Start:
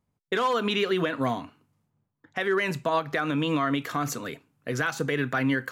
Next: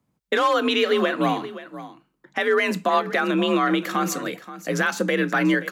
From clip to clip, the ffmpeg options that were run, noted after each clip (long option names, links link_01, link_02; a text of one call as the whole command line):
ffmpeg -i in.wav -af "aecho=1:1:528:0.178,afreqshift=44,volume=5dB" out.wav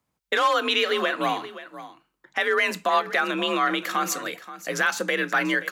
ffmpeg -i in.wav -af "equalizer=frequency=180:width=0.46:gain=-12,volume=1.5dB" out.wav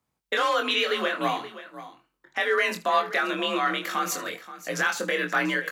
ffmpeg -i in.wav -af "aecho=1:1:23|77:0.596|0.133,volume=-3dB" out.wav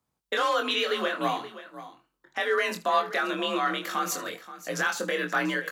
ffmpeg -i in.wav -af "equalizer=frequency=2200:width_type=o:width=0.65:gain=-4,volume=-1dB" out.wav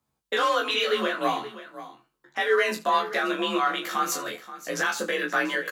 ffmpeg -i in.wav -filter_complex "[0:a]asplit=2[link_01][link_02];[link_02]adelay=14,volume=-2.5dB[link_03];[link_01][link_03]amix=inputs=2:normalize=0" out.wav